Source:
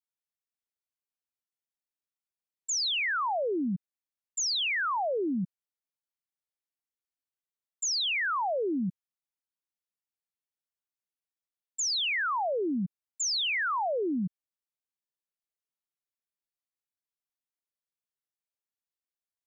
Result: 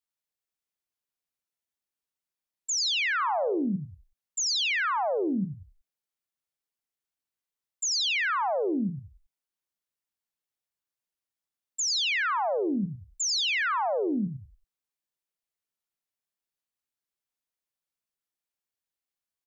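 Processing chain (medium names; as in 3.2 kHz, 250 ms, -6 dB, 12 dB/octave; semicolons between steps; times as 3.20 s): 3.16–3.56 s: doubling 40 ms -11.5 dB; 12.32–12.84 s: high-pass 53 Hz; on a send: frequency-shifting echo 91 ms, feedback 33%, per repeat -48 Hz, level -8.5 dB; on the sum: trim +1.5 dB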